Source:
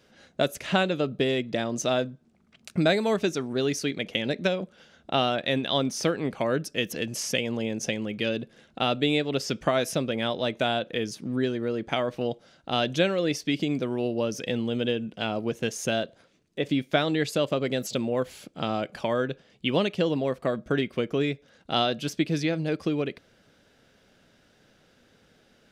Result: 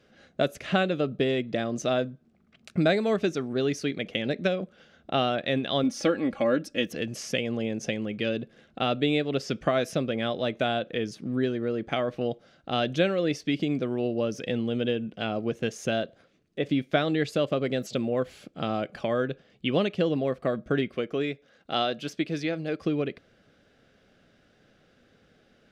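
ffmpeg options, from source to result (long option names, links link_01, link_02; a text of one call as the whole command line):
ffmpeg -i in.wav -filter_complex "[0:a]asettb=1/sr,asplit=3[link_01][link_02][link_03];[link_01]atrim=end=5.834[link_04];[link_02]atrim=start=5.83:end=6.87,asetpts=PTS-STARTPTS,afade=type=in:duration=0.004:curve=qsin,afade=type=out:start_time=1.036:duration=0.004:curve=qsin,aecho=1:1:3.6:0.65,atrim=end_sample=45864[link_05];[link_03]atrim=start=6.866[link_06];[link_04][link_05]acrossfade=duration=0.004:curve1=hsin:curve2=qsin[link_07];[link_07][link_06]acrossfade=duration=0.004:curve1=qsin:curve2=hsin,asettb=1/sr,asplit=3[link_08][link_09][link_10];[link_08]atrim=end=20.964[link_11];[link_09]atrim=start=20.96:end=22.82,asetpts=PTS-STARTPTS,afade=type=in:duration=0.004:curve=qsin,afade=type=out:start_time=1.856:duration=0.004:curve=qsin,lowshelf=frequency=200:gain=-10[link_12];[link_10]atrim=start=22.816[link_13];[link_11][link_12]acrossfade=duration=0.004:curve1=hsin:curve2=qsin[link_14];[link_14][link_13]acrossfade=duration=0.004:curve1=qsin:curve2=hsin,lowpass=frequency=3100:poles=1,bandreject=frequency=930:width=5.9" out.wav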